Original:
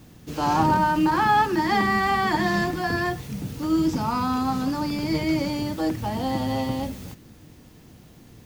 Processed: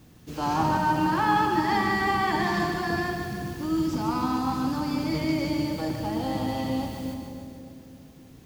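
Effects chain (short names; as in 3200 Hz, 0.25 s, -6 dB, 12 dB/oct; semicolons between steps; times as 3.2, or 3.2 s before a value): on a send: split-band echo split 610 Hz, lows 0.289 s, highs 0.148 s, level -6.5 dB; on the sum: non-linear reverb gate 0.49 s flat, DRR 7.5 dB; gain -4.5 dB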